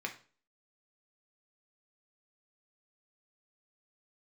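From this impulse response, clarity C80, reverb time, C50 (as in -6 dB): 17.5 dB, 0.40 s, 12.0 dB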